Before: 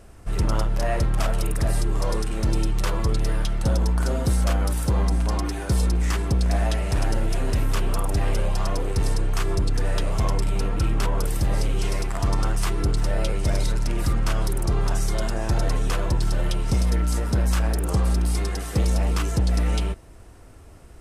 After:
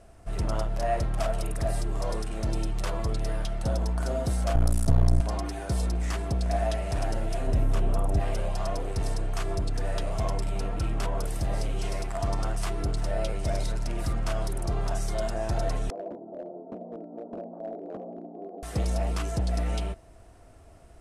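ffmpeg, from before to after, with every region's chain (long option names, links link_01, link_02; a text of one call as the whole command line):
ffmpeg -i in.wav -filter_complex "[0:a]asettb=1/sr,asplit=3[link_01][link_02][link_03];[link_01]atrim=end=4.554[link_04];[link_02]atrim=start=4.55:end=5.21,asetpts=PTS-STARTPTS,afade=type=in:duration=0.004:curve=qsin,afade=type=out:start_time=0.656:duration=0.004:curve=qsin,bass=frequency=250:gain=11,treble=frequency=4000:gain=5,aeval=exprs='max(val(0),0)':channel_layout=same[link_05];[link_03]atrim=start=5.206[link_06];[link_04][link_05]acrossfade=duration=0.004:curve1=hsin:curve2=qsin[link_07];[link_07][link_06]acrossfade=duration=0.004:curve1=qsin:curve2=hsin,asettb=1/sr,asplit=3[link_08][link_09][link_10];[link_08]atrim=end=7.474[link_11];[link_09]atrim=start=7.47:end=8.2,asetpts=PTS-STARTPTS,afade=type=in:duration=0.004:curve=qsin,afade=type=out:start_time=0.726:duration=0.004:curve=qsin,tiltshelf=frequency=780:gain=5,bandreject=frequency=4600:width=13[link_12];[link_10]atrim=start=8.196[link_13];[link_11][link_12]acrossfade=duration=0.004:curve1=hsin:curve2=qsin[link_14];[link_14][link_13]acrossfade=duration=0.004:curve1=qsin:curve2=hsin,asettb=1/sr,asplit=3[link_15][link_16][link_17];[link_15]atrim=end=15.904[link_18];[link_16]atrim=start=15.9:end=18.63,asetpts=PTS-STARTPTS,afade=type=in:duration=0.004:curve=qsin,afade=type=out:start_time=2.726:duration=0.004:curve=qsin,asuperpass=centerf=400:order=8:qfactor=0.79,asoftclip=type=hard:threshold=-27dB[link_19];[link_17]atrim=start=18.626[link_20];[link_18][link_19]acrossfade=duration=0.004:curve1=hsin:curve2=qsin[link_21];[link_21][link_20]acrossfade=duration=0.004:curve1=qsin:curve2=hsin,lowpass=frequency=12000:width=0.5412,lowpass=frequency=12000:width=1.3066,equalizer=frequency=670:width_type=o:width=0.27:gain=10.5,volume=-6.5dB" out.wav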